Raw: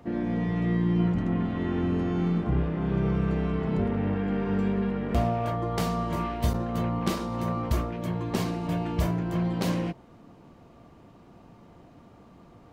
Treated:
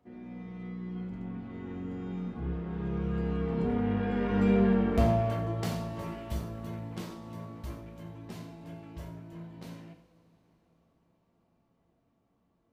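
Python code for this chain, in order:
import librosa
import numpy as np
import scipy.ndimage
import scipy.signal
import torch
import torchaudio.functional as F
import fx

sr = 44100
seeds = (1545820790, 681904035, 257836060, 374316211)

y = fx.doppler_pass(x, sr, speed_mps=14, closest_m=7.0, pass_at_s=4.58)
y = y + 10.0 ** (-12.5 / 20.0) * np.pad(y, (int(87 * sr / 1000.0), 0))[:len(y)]
y = fx.rev_double_slope(y, sr, seeds[0], early_s=0.35, late_s=4.4, knee_db=-22, drr_db=2.5)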